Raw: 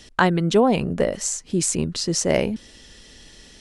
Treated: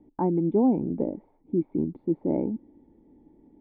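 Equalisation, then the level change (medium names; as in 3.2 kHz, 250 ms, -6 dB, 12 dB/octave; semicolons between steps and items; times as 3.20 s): cascade formant filter u; bass shelf 64 Hz -10 dB; +6.0 dB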